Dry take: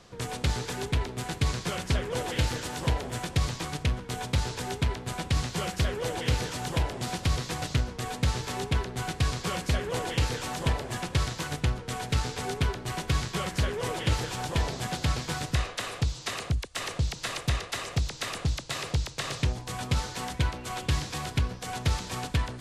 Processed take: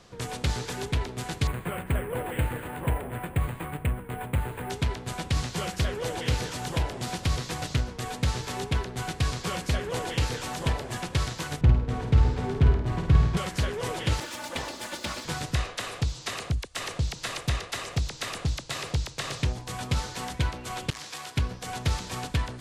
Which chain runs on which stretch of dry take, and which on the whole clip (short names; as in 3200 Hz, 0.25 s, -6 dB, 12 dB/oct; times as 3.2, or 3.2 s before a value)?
1.47–4.7 inverse Chebyshev low-pass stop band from 9700 Hz, stop band 70 dB + careless resampling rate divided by 4×, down filtered, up hold
11.61–13.37 LPF 1300 Hz 6 dB/oct + low shelf 270 Hz +8.5 dB + flutter echo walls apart 8.9 m, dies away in 0.53 s
14.2–15.25 minimum comb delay 3.4 ms + HPF 290 Hz 6 dB/oct
20.9–21.37 HPF 810 Hz 6 dB/oct + core saturation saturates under 1700 Hz
whole clip: dry